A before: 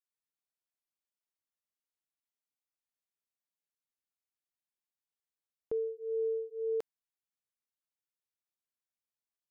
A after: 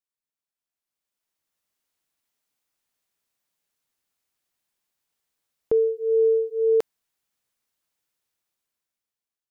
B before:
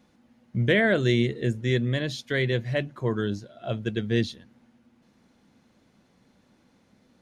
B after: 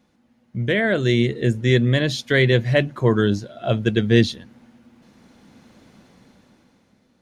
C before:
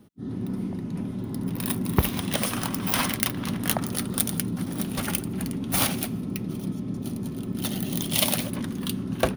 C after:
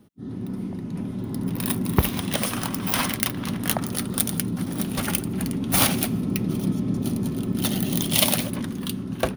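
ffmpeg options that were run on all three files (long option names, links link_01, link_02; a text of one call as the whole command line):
ffmpeg -i in.wav -af "dynaudnorm=framelen=270:gausssize=9:maxgain=14.5dB,volume=-1dB" out.wav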